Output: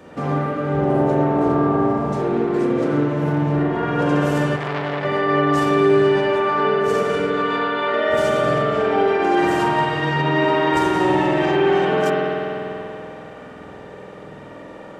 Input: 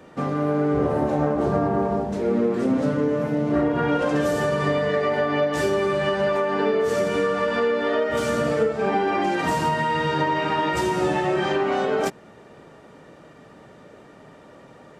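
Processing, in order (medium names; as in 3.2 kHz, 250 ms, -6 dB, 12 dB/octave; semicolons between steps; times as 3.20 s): peak limiter -19 dBFS, peak gain reduction 9 dB; 7.30–7.94 s: cabinet simulation 420–7400 Hz, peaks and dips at 610 Hz -4 dB, 3.7 kHz +5 dB, 5.4 kHz -9 dB; spring tank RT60 3.2 s, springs 48 ms, chirp 75 ms, DRR -5.5 dB; 4.56–5.05 s: transformer saturation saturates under 1.4 kHz; trim +2.5 dB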